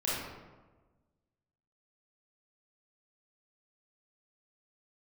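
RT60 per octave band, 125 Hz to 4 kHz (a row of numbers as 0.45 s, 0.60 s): 1.6 s, 1.5 s, 1.4 s, 1.2 s, 0.95 s, 0.70 s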